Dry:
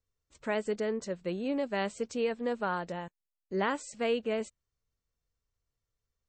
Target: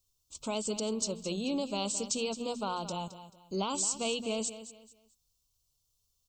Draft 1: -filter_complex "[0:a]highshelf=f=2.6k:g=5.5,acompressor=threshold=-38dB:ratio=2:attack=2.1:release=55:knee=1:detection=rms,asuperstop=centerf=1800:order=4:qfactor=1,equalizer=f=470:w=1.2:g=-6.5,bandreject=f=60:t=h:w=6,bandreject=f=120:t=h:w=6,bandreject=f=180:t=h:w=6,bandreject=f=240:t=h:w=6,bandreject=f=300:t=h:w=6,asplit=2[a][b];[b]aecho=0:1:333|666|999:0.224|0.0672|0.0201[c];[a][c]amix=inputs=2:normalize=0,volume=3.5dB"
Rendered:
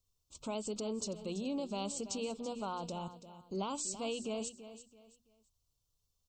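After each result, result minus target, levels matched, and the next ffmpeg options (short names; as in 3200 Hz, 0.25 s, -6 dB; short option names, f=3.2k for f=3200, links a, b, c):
echo 0.115 s late; compressor: peak gain reduction +3.5 dB; 4000 Hz band -2.5 dB
-filter_complex "[0:a]highshelf=f=2.6k:g=5.5,acompressor=threshold=-29dB:ratio=2:attack=2.1:release=55:knee=1:detection=rms,asuperstop=centerf=1800:order=4:qfactor=1,equalizer=f=470:w=1.2:g=-6.5,bandreject=f=60:t=h:w=6,bandreject=f=120:t=h:w=6,bandreject=f=180:t=h:w=6,bandreject=f=240:t=h:w=6,bandreject=f=300:t=h:w=6,asplit=2[a][b];[b]aecho=0:1:218|436|654:0.224|0.0672|0.0201[c];[a][c]amix=inputs=2:normalize=0,volume=3.5dB"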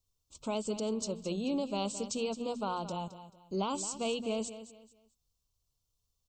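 4000 Hz band -3.0 dB
-filter_complex "[0:a]highshelf=f=2.6k:g=14,acompressor=threshold=-29dB:ratio=2:attack=2.1:release=55:knee=1:detection=rms,asuperstop=centerf=1800:order=4:qfactor=1,equalizer=f=470:w=1.2:g=-6.5,bandreject=f=60:t=h:w=6,bandreject=f=120:t=h:w=6,bandreject=f=180:t=h:w=6,bandreject=f=240:t=h:w=6,bandreject=f=300:t=h:w=6,asplit=2[a][b];[b]aecho=0:1:218|436|654:0.224|0.0672|0.0201[c];[a][c]amix=inputs=2:normalize=0,volume=3.5dB"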